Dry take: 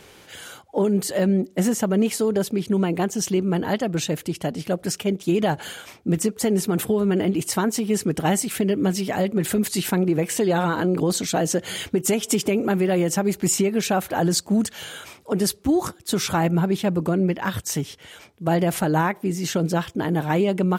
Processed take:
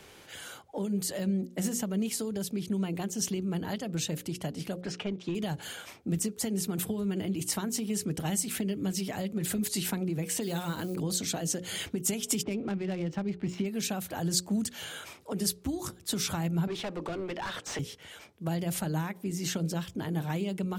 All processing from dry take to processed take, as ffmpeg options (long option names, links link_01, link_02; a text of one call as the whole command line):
ffmpeg -i in.wav -filter_complex "[0:a]asettb=1/sr,asplit=3[link_01][link_02][link_03];[link_01]atrim=end=4.814[link_04];[link_02]atrim=start=4.81:end=5.35,asetpts=PTS-STARTPTS,afade=type=in:duration=0.004:curve=qsin,afade=type=out:start_time=0.536:duration=0.004:curve=qsin,lowpass=5100,asplit=2[link_05][link_06];[link_06]highpass=frequency=720:poles=1,volume=14dB,asoftclip=type=tanh:threshold=-11dB[link_07];[link_05][link_07]amix=inputs=2:normalize=0,lowpass=frequency=1500:poles=1,volume=-6dB[link_08];[link_03]atrim=start=5.346[link_09];[link_04][link_08]acrossfade=duration=0.004:curve1=hsin:curve2=qsin[link_10];[link_10][link_09]acrossfade=duration=0.004:curve1=qsin:curve2=hsin,asettb=1/sr,asplit=3[link_11][link_12][link_13];[link_11]atrim=end=10.424[link_14];[link_12]atrim=start=10.42:end=10.96,asetpts=PTS-STARTPTS,afade=type=in:duration=0.004:curve=qsin,afade=type=out:start_time=0.536:duration=0.004:curve=qsin,acrusher=bits=9:mode=log:mix=0:aa=0.000001,highshelf=frequency=6100:gain=8[link_15];[link_13]atrim=start=10.956[link_16];[link_14][link_15]acrossfade=duration=0.004:curve1=hsin:curve2=qsin[link_17];[link_17][link_16]acrossfade=duration=0.004:curve1=qsin:curve2=hsin,asettb=1/sr,asplit=3[link_18][link_19][link_20];[link_18]atrim=end=12.434[link_21];[link_19]atrim=start=12.43:end=13.66,asetpts=PTS-STARTPTS,afade=type=in:duration=0.004:curve=qsin,afade=type=out:start_time=1.226:duration=0.004:curve=qsin,lowpass=3400,adynamicsmooth=sensitivity=5.5:basefreq=2100[link_22];[link_20]atrim=start=13.656[link_23];[link_21][link_22]acrossfade=duration=0.004:curve1=hsin:curve2=qsin[link_24];[link_24][link_23]acrossfade=duration=0.004:curve1=qsin:curve2=hsin,asettb=1/sr,asplit=3[link_25][link_26][link_27];[link_25]atrim=end=16.674[link_28];[link_26]atrim=start=16.67:end=17.79,asetpts=PTS-STARTPTS,afade=type=in:duration=0.004:curve=qsin,afade=type=out:start_time=1.116:duration=0.004:curve=qsin,highpass=380,asplit=2[link_29][link_30];[link_30]highpass=frequency=720:poles=1,volume=23dB,asoftclip=type=tanh:threshold=-11dB[link_31];[link_29][link_31]amix=inputs=2:normalize=0,lowpass=frequency=1200:poles=1,volume=-6dB,adynamicsmooth=sensitivity=6:basefreq=6900[link_32];[link_27]atrim=start=17.786[link_33];[link_28][link_32]acrossfade=duration=0.004:curve1=hsin:curve2=qsin[link_34];[link_34][link_33]acrossfade=duration=0.004:curve1=qsin:curve2=hsin,bandreject=frequency=60:width_type=h:width=6,bandreject=frequency=120:width_type=h:width=6,bandreject=frequency=180:width_type=h:width=6,bandreject=frequency=240:width_type=h:width=6,bandreject=frequency=300:width_type=h:width=6,bandreject=frequency=360:width_type=h:width=6,bandreject=frequency=420:width_type=h:width=6,bandreject=frequency=480:width_type=h:width=6,bandreject=frequency=540:width_type=h:width=6,acrossover=split=190|3000[link_35][link_36][link_37];[link_36]acompressor=threshold=-31dB:ratio=6[link_38];[link_35][link_38][link_37]amix=inputs=3:normalize=0,volume=-4.5dB" out.wav